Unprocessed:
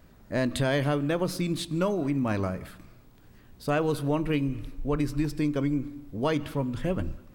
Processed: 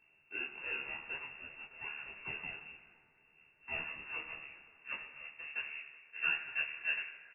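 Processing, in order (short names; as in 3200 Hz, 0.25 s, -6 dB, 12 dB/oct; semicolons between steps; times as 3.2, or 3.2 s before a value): comb 1.7 ms, depth 52%; limiter -22.5 dBFS, peak gain reduction 9 dB; band-pass sweep 1600 Hz -> 470 Hz, 3.46–6.89; full-wave rectifier; flange 0.41 Hz, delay 2.3 ms, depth 9.5 ms, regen -60%; thinning echo 0.126 s, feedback 82%, high-pass 170 Hz, level -19.5 dB; reverb RT60 1.0 s, pre-delay 4 ms, DRR 7.5 dB; inverted band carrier 2700 Hz; detuned doubles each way 48 cents; gain +6.5 dB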